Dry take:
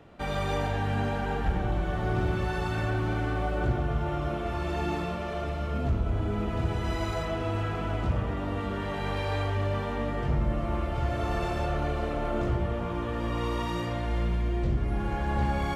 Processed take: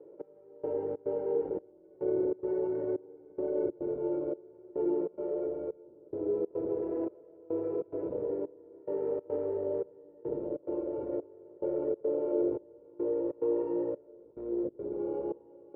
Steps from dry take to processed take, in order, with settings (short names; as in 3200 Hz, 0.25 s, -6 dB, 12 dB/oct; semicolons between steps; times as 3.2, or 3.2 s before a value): comb 2.1 ms, depth 99%; sample-and-hold 12×; in parallel at -7 dB: wavefolder -21.5 dBFS; on the sum: step gate "xx....xxx.xxx" 142 bpm -24 dB; Butterworth band-pass 390 Hz, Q 1.6; outdoor echo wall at 300 m, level -24 dB